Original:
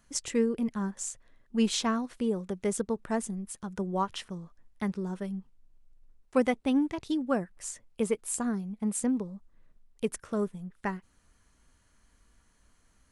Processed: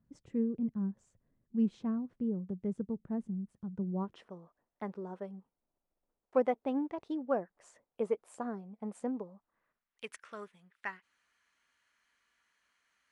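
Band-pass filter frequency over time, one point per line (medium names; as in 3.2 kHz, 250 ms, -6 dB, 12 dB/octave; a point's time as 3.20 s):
band-pass filter, Q 1.2
3.91 s 150 Hz
4.32 s 650 Hz
9.18 s 650 Hz
10.04 s 2.2 kHz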